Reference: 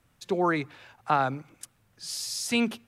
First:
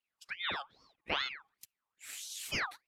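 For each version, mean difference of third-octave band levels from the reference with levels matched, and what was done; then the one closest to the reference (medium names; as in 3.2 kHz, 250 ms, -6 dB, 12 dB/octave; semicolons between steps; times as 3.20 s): 10.0 dB: spectral noise reduction 14 dB; ring modulator with a swept carrier 1.9 kHz, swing 50%, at 2.4 Hz; trim -7.5 dB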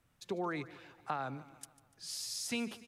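5.0 dB: compression 6:1, threshold -26 dBFS, peak gain reduction 8 dB; feedback delay 147 ms, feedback 53%, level -17.5 dB; trim -7 dB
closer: second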